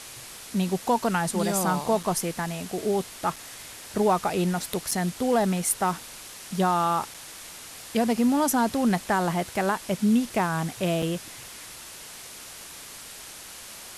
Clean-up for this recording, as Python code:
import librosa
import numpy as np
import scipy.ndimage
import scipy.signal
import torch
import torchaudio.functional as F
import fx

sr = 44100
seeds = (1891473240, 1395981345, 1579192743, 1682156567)

y = fx.fix_interpolate(x, sr, at_s=(2.03, 3.36, 4.91, 7.14, 11.02), length_ms=4.7)
y = fx.noise_reduce(y, sr, print_start_s=11.73, print_end_s=12.23, reduce_db=28.0)